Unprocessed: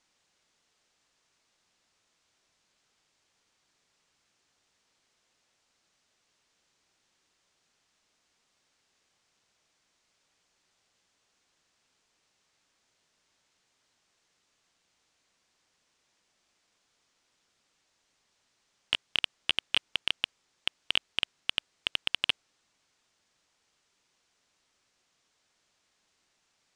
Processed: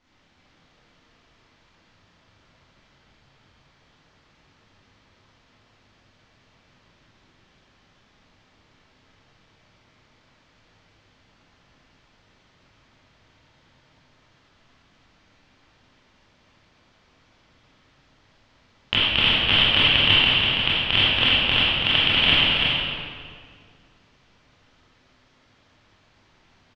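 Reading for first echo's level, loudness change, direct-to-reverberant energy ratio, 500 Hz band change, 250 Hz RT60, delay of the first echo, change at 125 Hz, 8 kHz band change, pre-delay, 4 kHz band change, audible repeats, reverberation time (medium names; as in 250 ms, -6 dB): -4.5 dB, +13.5 dB, -11.0 dB, +18.0 dB, 2.4 s, 330 ms, +27.5 dB, no reading, 21 ms, +13.5 dB, 1, 2.0 s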